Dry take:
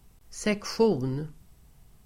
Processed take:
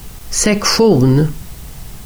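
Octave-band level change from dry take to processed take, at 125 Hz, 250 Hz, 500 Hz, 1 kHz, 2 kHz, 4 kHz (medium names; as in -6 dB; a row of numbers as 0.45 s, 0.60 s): +19.0 dB, +15.5 dB, +12.5 dB, +14.5 dB, +14.5 dB, +20.0 dB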